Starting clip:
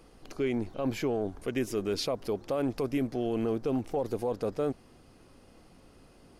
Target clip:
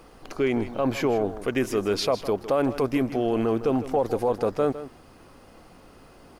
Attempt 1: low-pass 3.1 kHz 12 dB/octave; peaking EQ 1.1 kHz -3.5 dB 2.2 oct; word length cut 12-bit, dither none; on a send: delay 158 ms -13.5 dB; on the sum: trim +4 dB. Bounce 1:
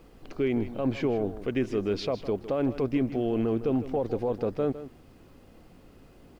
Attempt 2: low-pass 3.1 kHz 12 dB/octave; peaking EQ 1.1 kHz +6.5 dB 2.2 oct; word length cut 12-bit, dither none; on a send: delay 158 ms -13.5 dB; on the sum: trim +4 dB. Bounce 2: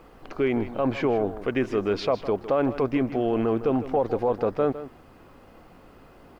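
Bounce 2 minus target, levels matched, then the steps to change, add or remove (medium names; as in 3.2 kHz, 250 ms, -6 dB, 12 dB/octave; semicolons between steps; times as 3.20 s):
4 kHz band -5.5 dB
remove: low-pass 3.1 kHz 12 dB/octave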